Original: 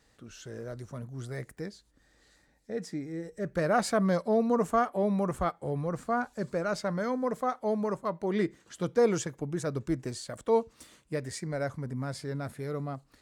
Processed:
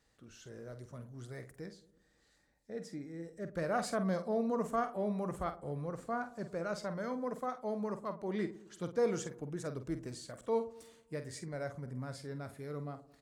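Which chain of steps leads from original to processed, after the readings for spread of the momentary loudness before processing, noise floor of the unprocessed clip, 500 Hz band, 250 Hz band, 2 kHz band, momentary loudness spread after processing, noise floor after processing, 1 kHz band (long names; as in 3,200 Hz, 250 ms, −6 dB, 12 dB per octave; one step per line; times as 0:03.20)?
14 LU, −67 dBFS, −7.5 dB, −7.5 dB, −7.5 dB, 15 LU, −72 dBFS, −7.5 dB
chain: double-tracking delay 48 ms −10 dB
delay with a low-pass on its return 109 ms, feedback 50%, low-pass 890 Hz, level −16.5 dB
level −8 dB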